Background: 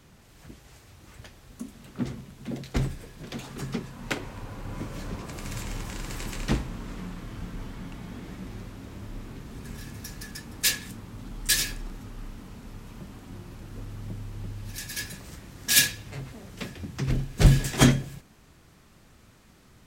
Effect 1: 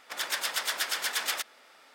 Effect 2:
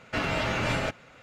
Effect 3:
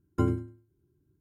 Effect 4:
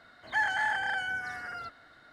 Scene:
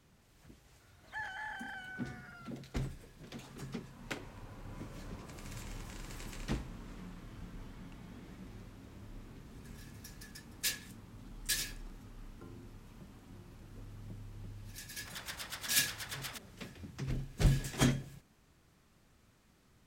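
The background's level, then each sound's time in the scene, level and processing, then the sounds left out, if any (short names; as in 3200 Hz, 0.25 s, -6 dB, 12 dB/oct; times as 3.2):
background -11 dB
0.8 add 4 -14 dB
12.23 add 3 -15 dB + compressor, threshold -34 dBFS
14.96 add 1 -13 dB
not used: 2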